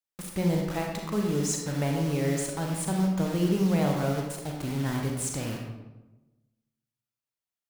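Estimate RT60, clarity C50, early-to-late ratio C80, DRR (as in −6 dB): 1.1 s, 2.5 dB, 4.5 dB, 0.5 dB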